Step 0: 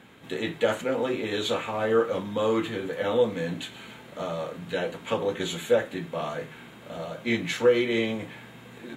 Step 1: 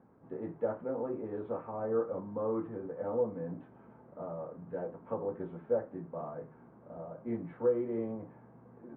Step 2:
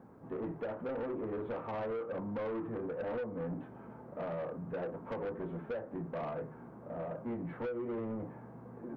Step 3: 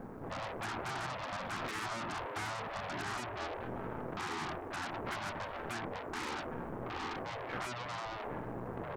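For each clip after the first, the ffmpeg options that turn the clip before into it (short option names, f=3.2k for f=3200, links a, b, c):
-af "lowpass=f=1.1k:w=0.5412,lowpass=f=1.1k:w=1.3066,volume=-8.5dB"
-af "acompressor=threshold=-35dB:ratio=12,asoftclip=type=tanh:threshold=-40dB,volume=6.5dB"
-af "aeval=exprs='0.0224*(cos(1*acos(clip(val(0)/0.0224,-1,1)))-cos(1*PI/2))+0.00251*(cos(4*acos(clip(val(0)/0.0224,-1,1)))-cos(4*PI/2))+0.002*(cos(8*acos(clip(val(0)/0.0224,-1,1)))-cos(8*PI/2))':c=same,afftfilt=real='re*lt(hypot(re,im),0.0251)':imag='im*lt(hypot(re,im),0.0251)':win_size=1024:overlap=0.75,volume=9.5dB"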